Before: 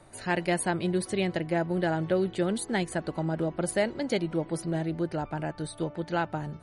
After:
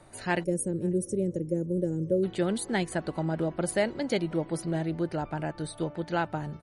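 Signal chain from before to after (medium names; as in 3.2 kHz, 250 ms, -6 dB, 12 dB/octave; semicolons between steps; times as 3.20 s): time-frequency box 0.43–2.24 s, 590–5300 Hz -27 dB; echo from a far wall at 93 m, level -29 dB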